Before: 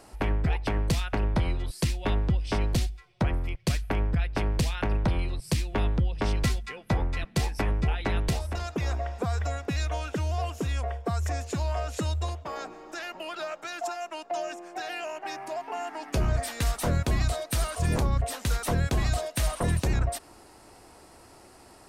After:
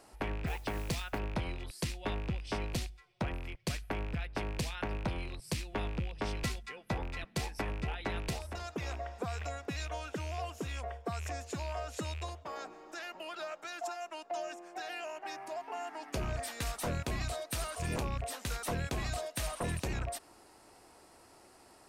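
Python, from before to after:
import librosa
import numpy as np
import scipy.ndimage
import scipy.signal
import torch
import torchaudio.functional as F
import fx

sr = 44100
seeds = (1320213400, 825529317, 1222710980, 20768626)

y = fx.rattle_buzz(x, sr, strikes_db=-26.0, level_db=-30.0)
y = fx.mod_noise(y, sr, seeds[0], snr_db=25, at=(0.46, 1.17), fade=0.02)
y = fx.low_shelf(y, sr, hz=170.0, db=-7.0)
y = y * 10.0 ** (-6.0 / 20.0)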